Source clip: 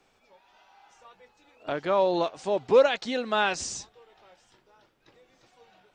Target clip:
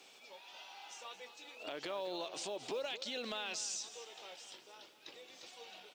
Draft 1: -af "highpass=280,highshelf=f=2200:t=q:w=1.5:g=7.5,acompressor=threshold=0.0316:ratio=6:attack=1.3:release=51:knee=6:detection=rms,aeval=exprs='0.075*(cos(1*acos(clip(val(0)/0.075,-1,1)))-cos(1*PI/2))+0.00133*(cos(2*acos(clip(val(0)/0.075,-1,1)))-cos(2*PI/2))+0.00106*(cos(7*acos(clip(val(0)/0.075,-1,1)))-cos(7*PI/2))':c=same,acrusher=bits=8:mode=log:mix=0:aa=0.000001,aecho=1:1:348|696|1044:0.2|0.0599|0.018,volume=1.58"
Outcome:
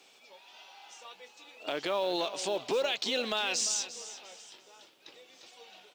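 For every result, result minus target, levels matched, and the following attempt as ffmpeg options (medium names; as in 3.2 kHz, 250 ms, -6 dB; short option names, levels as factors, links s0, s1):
echo 128 ms late; compression: peak gain reduction -9.5 dB
-af "highpass=280,highshelf=f=2200:t=q:w=1.5:g=7.5,acompressor=threshold=0.0316:ratio=6:attack=1.3:release=51:knee=6:detection=rms,aeval=exprs='0.075*(cos(1*acos(clip(val(0)/0.075,-1,1)))-cos(1*PI/2))+0.00133*(cos(2*acos(clip(val(0)/0.075,-1,1)))-cos(2*PI/2))+0.00106*(cos(7*acos(clip(val(0)/0.075,-1,1)))-cos(7*PI/2))':c=same,acrusher=bits=8:mode=log:mix=0:aa=0.000001,aecho=1:1:220|440|660:0.2|0.0599|0.018,volume=1.58"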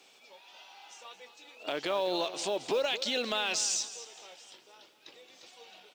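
compression: peak gain reduction -9.5 dB
-af "highpass=280,highshelf=f=2200:t=q:w=1.5:g=7.5,acompressor=threshold=0.00841:ratio=6:attack=1.3:release=51:knee=6:detection=rms,aeval=exprs='0.075*(cos(1*acos(clip(val(0)/0.075,-1,1)))-cos(1*PI/2))+0.00133*(cos(2*acos(clip(val(0)/0.075,-1,1)))-cos(2*PI/2))+0.00106*(cos(7*acos(clip(val(0)/0.075,-1,1)))-cos(7*PI/2))':c=same,acrusher=bits=8:mode=log:mix=0:aa=0.000001,aecho=1:1:220|440|660:0.2|0.0599|0.018,volume=1.58"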